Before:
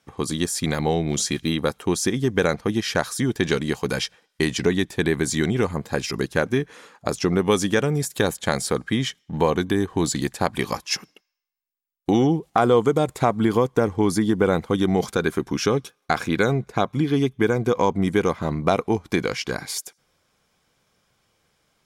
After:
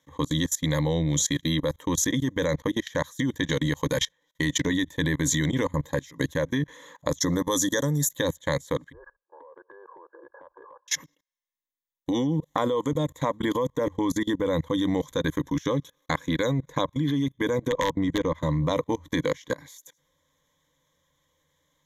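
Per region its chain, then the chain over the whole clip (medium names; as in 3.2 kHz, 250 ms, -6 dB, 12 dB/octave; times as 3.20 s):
7.20–8.11 s: Butterworth band-stop 2.6 kHz, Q 1.4 + treble shelf 3 kHz +10.5 dB
8.92–10.88 s: brick-wall FIR band-pass 350–1700 Hz + compression 16:1, threshold -34 dBFS
17.68–18.35 s: de-esser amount 85% + integer overflow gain 10 dB + distance through air 73 m
whole clip: rippled EQ curve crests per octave 1.1, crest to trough 16 dB; level held to a coarse grid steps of 24 dB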